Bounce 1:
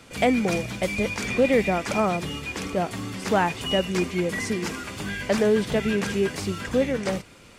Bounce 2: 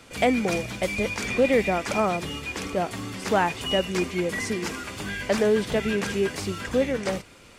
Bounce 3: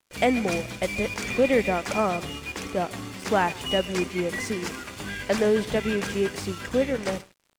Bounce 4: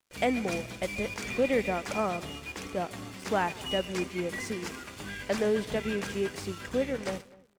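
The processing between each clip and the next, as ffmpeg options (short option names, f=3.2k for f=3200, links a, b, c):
-af "equalizer=f=160:t=o:w=1.2:g=-3.5"
-af "aecho=1:1:139:0.119,aeval=exprs='sgn(val(0))*max(abs(val(0))-0.00668,0)':c=same"
-filter_complex "[0:a]asplit=2[a][b];[b]adelay=249,lowpass=f=1.8k:p=1,volume=-22dB,asplit=2[c][d];[d]adelay=249,lowpass=f=1.8k:p=1,volume=0.32[e];[a][c][e]amix=inputs=3:normalize=0,volume=-5.5dB"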